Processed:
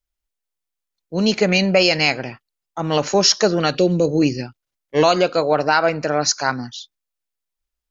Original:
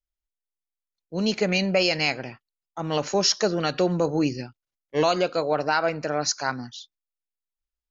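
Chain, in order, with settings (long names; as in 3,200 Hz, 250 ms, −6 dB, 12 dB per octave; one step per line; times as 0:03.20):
0:03.75–0:04.22: flat-topped bell 1,200 Hz −13 dB
level +6.5 dB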